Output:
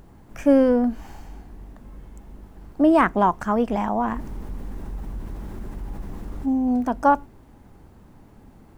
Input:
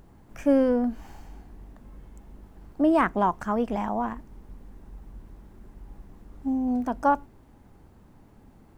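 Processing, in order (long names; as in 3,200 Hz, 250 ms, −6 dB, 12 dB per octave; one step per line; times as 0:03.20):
0:04.04–0:06.46: envelope flattener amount 50%
level +4.5 dB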